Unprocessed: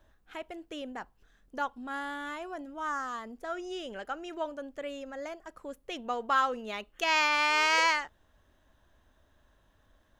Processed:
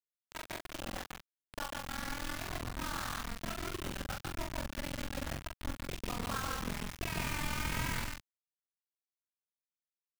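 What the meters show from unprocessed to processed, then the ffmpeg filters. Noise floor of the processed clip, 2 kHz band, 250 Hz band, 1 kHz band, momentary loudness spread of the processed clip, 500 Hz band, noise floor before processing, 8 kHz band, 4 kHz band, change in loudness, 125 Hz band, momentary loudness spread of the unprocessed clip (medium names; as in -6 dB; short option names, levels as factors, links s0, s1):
under -85 dBFS, -10.0 dB, -1.5 dB, -11.0 dB, 8 LU, -8.5 dB, -68 dBFS, +0.5 dB, -7.0 dB, -8.5 dB, no reading, 20 LU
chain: -filter_complex "[0:a]bandreject=f=60:t=h:w=6,bandreject=f=120:t=h:w=6,bandreject=f=180:t=h:w=6,bandreject=f=240:t=h:w=6,bandreject=f=300:t=h:w=6,aeval=exprs='val(0)*sin(2*PI*21*n/s)':c=same,asplit=2[s0][s1];[s1]alimiter=limit=0.0631:level=0:latency=1:release=22,volume=1.12[s2];[s0][s2]amix=inputs=2:normalize=0,acompressor=threshold=0.00708:ratio=2.5,acrossover=split=3100[s3][s4];[s4]acrusher=samples=33:mix=1:aa=0.000001[s5];[s3][s5]amix=inputs=2:normalize=0,aecho=1:1:145.8|250.7:0.794|0.251,acrusher=bits=5:mix=0:aa=0.000001,asplit=2[s6][s7];[s7]adelay=42,volume=0.631[s8];[s6][s8]amix=inputs=2:normalize=0,asubboost=boost=7:cutoff=180,volume=0.841"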